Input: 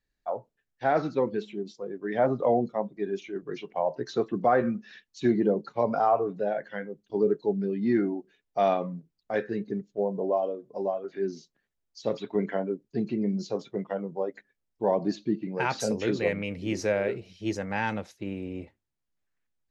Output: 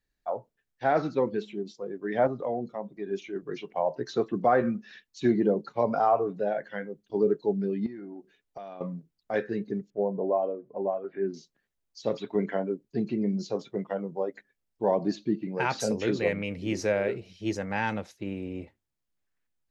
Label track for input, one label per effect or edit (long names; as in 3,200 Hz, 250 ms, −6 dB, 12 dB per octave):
2.270000	3.110000	downward compressor 1.5 to 1, threshold −39 dBFS
7.860000	8.810000	downward compressor 16 to 1, threshold −37 dBFS
9.900000	11.340000	low-pass filter 2,400 Hz 24 dB per octave